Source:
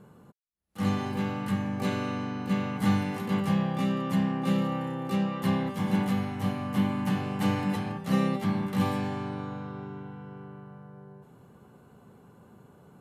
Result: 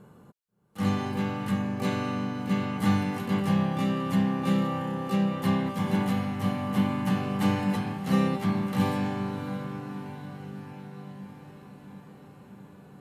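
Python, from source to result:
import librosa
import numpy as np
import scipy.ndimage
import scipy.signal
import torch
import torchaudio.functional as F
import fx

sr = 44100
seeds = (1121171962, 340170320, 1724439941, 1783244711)

y = fx.echo_diffused(x, sr, ms=659, feedback_pct=68, wet_db=-14)
y = F.gain(torch.from_numpy(y), 1.0).numpy()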